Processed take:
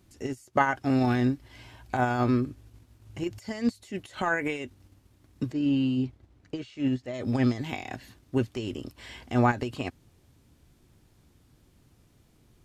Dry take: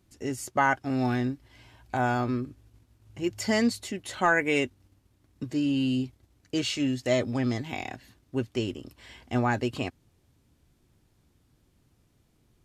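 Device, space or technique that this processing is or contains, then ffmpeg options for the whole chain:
de-esser from a sidechain: -filter_complex "[0:a]asplit=2[a][b];[b]highpass=f=6.4k:w=0.5412,highpass=f=6.4k:w=1.3066,apad=whole_len=557652[c];[a][c]sidechaincompress=threshold=-58dB:ratio=10:attack=2.8:release=71,asplit=3[d][e][f];[d]afade=t=out:st=5.51:d=0.02[g];[e]aemphasis=mode=reproduction:type=75kf,afade=t=in:st=5.51:d=0.02,afade=t=out:st=7.13:d=0.02[h];[f]afade=t=in:st=7.13:d=0.02[i];[g][h][i]amix=inputs=3:normalize=0,volume=5dB"

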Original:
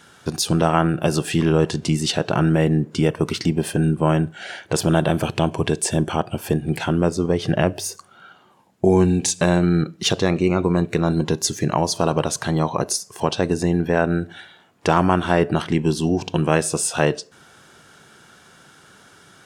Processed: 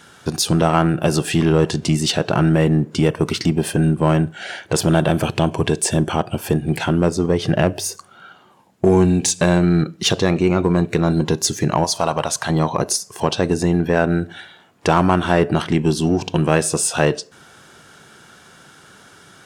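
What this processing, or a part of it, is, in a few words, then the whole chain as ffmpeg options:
parallel distortion: -filter_complex "[0:a]asettb=1/sr,asplit=3[a][b][c];[a]atrim=end=11.844[d];[b]atrim=start=11.84:end=12.5,asetpts=PTS-STARTPTS,afade=t=in:d=0.004:c=qsin,afade=t=out:st=0.656:d=0.004:c=qsin,lowshelf=f=540:t=q:w=1.5:g=-6.5[e];[c]atrim=start=12.496[f];[d][e]acrossfade=d=0.004:c1=hsin:c2=qsin[g];[g][f]acrossfade=d=0.004:c1=qsin:c2=hsin,asplit=2[h][i];[i]asoftclip=type=hard:threshold=-17.5dB,volume=-7dB[j];[h][j]amix=inputs=2:normalize=0"

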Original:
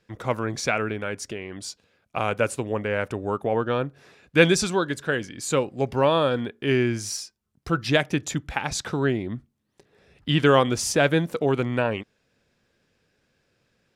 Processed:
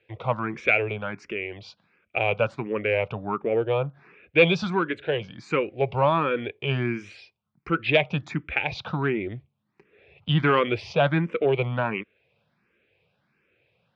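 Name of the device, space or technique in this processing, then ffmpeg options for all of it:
barber-pole phaser into a guitar amplifier: -filter_complex "[0:a]asettb=1/sr,asplit=3[a][b][c];[a]atrim=end=3.324[d];[b]atrim=start=3.32:end=4.47,asetpts=PTS-STARTPTS,afade=t=in:d=0.004:c=qsin,afade=t=out:st=1.146:d=0.004:c=qsin,highshelf=f=4.1k:g=-10[e];[c]atrim=start=4.466[f];[d][e]acrossfade=d=0.004:c1=hsin:c2=qsin[g];[g][f]acrossfade=d=0.004:c1=qsin:c2=hsin,asplit=2[h][i];[i]afreqshift=1.4[j];[h][j]amix=inputs=2:normalize=1,asoftclip=type=tanh:threshold=-12.5dB,highpass=91,equalizer=f=260:t=q:w=4:g=-8,equalizer=f=1.7k:t=q:w=4:g=-4,equalizer=f=2.4k:t=q:w=4:g=8,lowpass=f=3.4k:w=0.5412,lowpass=f=3.4k:w=1.3066,volume=3.5dB"

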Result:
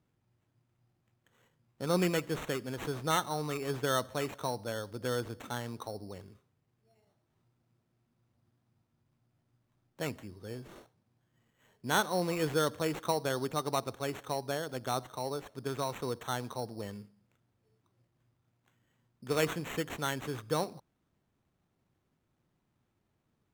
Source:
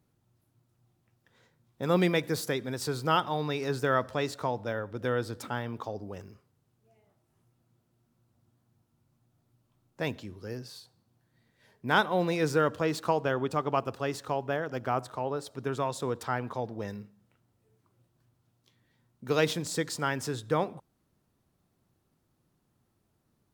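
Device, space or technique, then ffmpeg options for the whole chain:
crushed at another speed: -af "asetrate=22050,aresample=44100,acrusher=samples=18:mix=1:aa=0.000001,asetrate=88200,aresample=44100,volume=-4dB"

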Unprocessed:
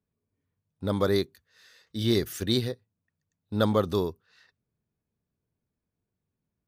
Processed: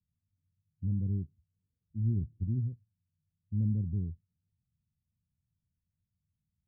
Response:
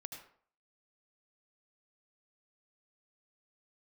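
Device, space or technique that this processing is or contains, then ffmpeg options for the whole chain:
the neighbour's flat through the wall: -af "lowpass=f=180:w=0.5412,lowpass=f=180:w=1.3066,equalizer=f=80:t=o:w=0.56:g=5"

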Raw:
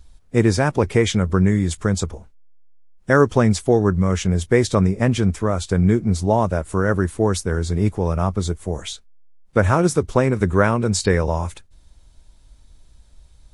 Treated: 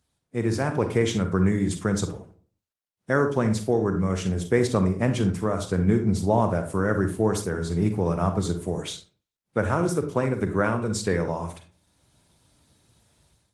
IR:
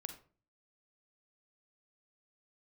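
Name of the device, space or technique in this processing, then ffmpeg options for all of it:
far-field microphone of a smart speaker: -filter_complex "[0:a]asplit=3[a][b][c];[a]afade=t=out:st=5.95:d=0.02[d];[b]lowshelf=f=140:g=2.5,afade=t=in:st=5.95:d=0.02,afade=t=out:st=7.25:d=0.02[e];[c]afade=t=in:st=7.25:d=0.02[f];[d][e][f]amix=inputs=3:normalize=0[g];[1:a]atrim=start_sample=2205[h];[g][h]afir=irnorm=-1:irlink=0,highpass=f=100:w=0.5412,highpass=f=100:w=1.3066,dynaudnorm=f=380:g=3:m=12.5dB,volume=-7.5dB" -ar 48000 -c:a libopus -b:a 24k

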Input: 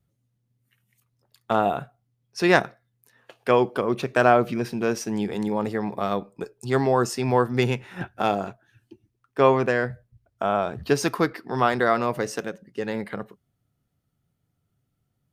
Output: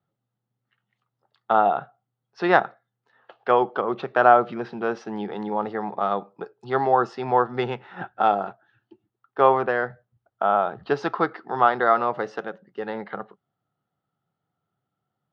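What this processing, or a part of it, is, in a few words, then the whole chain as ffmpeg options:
kitchen radio: -af "highpass=190,equalizer=f=260:t=q:w=4:g=-6,equalizer=f=800:t=q:w=4:g=9,equalizer=f=1.3k:t=q:w=4:g=7,equalizer=f=2.4k:t=q:w=4:g=-8,lowpass=f=3.7k:w=0.5412,lowpass=f=3.7k:w=1.3066,volume=-1.5dB"

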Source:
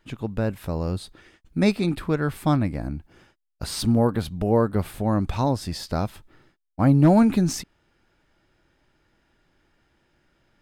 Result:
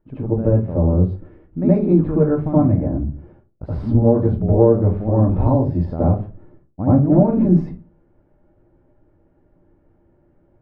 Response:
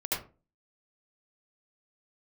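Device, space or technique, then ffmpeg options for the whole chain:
television next door: -filter_complex "[0:a]acompressor=threshold=-19dB:ratio=4,lowpass=600[a];[1:a]atrim=start_sample=2205[b];[a][b]afir=irnorm=-1:irlink=0,volume=3.5dB"

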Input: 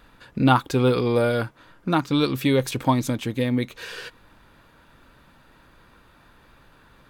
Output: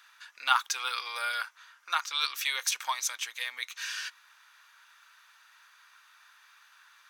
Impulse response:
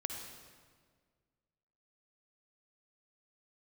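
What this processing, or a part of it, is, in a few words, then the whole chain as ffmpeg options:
headphones lying on a table: -af "highpass=f=1.2k:w=0.5412,highpass=f=1.2k:w=1.3066,equalizer=f=6k:t=o:w=0.38:g=10"

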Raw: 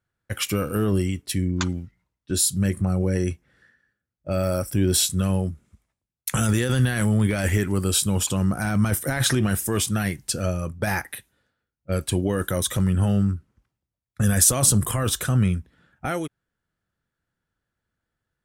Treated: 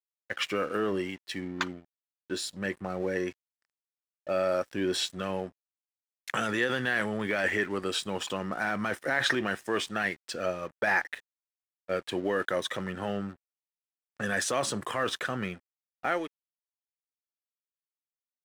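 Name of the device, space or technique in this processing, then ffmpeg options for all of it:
pocket radio on a weak battery: -af "highpass=390,lowpass=3.4k,aeval=exprs='sgn(val(0))*max(abs(val(0))-0.00335,0)':c=same,equalizer=f=1.8k:t=o:w=0.22:g=6"

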